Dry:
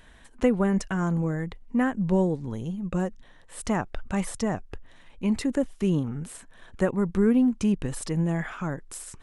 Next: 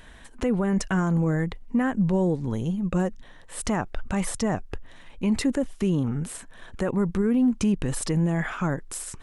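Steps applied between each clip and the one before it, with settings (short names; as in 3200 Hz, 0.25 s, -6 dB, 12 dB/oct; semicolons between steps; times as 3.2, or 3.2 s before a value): limiter -20.5 dBFS, peak gain reduction 11 dB; gain +5 dB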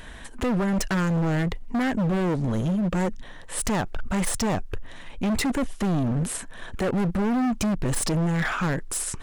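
overloaded stage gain 28 dB; gain +6.5 dB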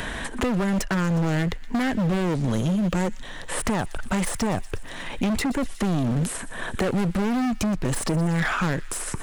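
thin delay 0.12 s, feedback 60%, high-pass 1900 Hz, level -18 dB; three-band squash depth 70%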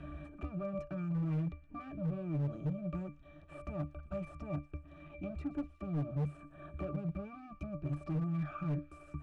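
octave resonator D, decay 0.21 s; overloaded stage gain 29.5 dB; gain -1 dB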